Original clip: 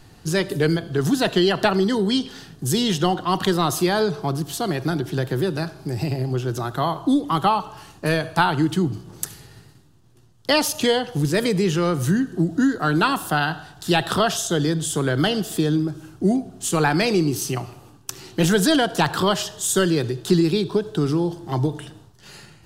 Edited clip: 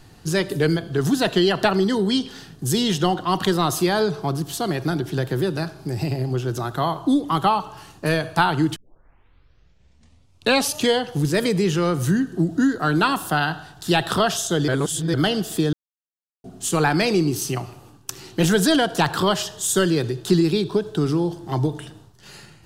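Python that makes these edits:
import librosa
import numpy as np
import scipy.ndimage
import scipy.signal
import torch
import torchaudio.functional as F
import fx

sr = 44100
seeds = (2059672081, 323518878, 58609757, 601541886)

y = fx.edit(x, sr, fx.tape_start(start_s=8.76, length_s=2.02),
    fx.reverse_span(start_s=14.68, length_s=0.46),
    fx.silence(start_s=15.73, length_s=0.71), tone=tone)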